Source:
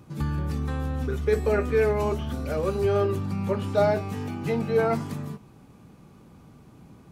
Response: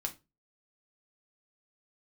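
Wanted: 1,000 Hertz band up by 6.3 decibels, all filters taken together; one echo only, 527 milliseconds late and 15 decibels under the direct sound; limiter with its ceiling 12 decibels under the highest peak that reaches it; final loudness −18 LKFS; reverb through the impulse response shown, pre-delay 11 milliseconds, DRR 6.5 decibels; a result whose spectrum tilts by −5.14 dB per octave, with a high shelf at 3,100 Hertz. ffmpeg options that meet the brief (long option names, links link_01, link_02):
-filter_complex "[0:a]equalizer=frequency=1000:width_type=o:gain=9,highshelf=frequency=3100:gain=-5.5,alimiter=limit=-19dB:level=0:latency=1,aecho=1:1:527:0.178,asplit=2[link_01][link_02];[1:a]atrim=start_sample=2205,adelay=11[link_03];[link_02][link_03]afir=irnorm=-1:irlink=0,volume=-7dB[link_04];[link_01][link_04]amix=inputs=2:normalize=0,volume=10dB"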